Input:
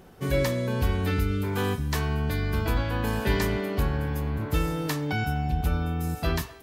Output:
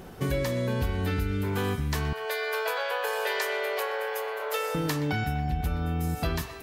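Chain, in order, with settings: 2.13–4.75 Chebyshev high-pass 430 Hz, order 6; compressor 4:1, threshold -33 dBFS, peak gain reduction 12 dB; narrowing echo 0.123 s, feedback 82%, band-pass 2100 Hz, level -13 dB; gain +6.5 dB

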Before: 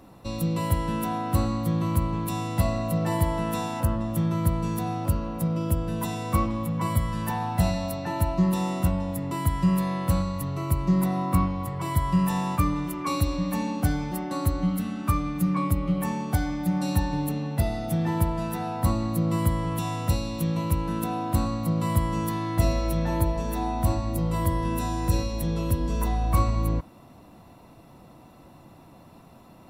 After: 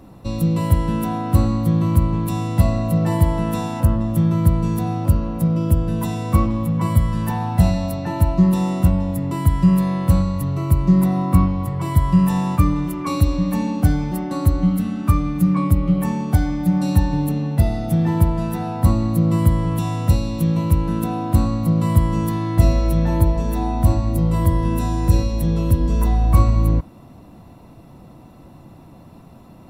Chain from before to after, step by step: low shelf 370 Hz +8 dB; gain +1.5 dB

